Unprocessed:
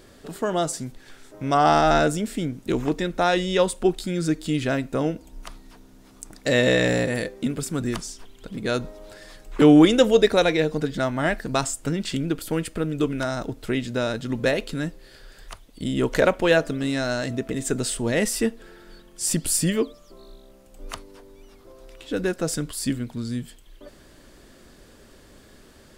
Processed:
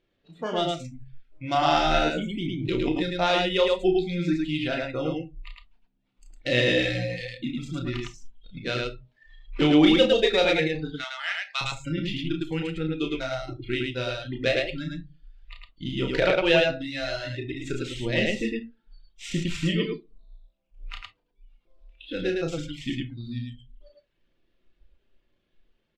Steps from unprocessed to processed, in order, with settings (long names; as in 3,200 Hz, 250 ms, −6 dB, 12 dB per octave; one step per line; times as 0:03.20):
running median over 9 samples
high-frequency loss of the air 210 metres
reverb reduction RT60 1.2 s
flat-topped bell 5,300 Hz +14 dB 2.7 octaves
rectangular room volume 460 cubic metres, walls furnished, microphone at 0.82 metres
noise reduction from a noise print of the clip's start 20 dB
0:10.93–0:11.61: high-pass filter 1,100 Hz 24 dB per octave
loudspeakers that aren't time-aligned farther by 11 metres −5 dB, 37 metres −2 dB
0:02.16–0:03.03: background raised ahead of every attack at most 44 dB per second
level −5 dB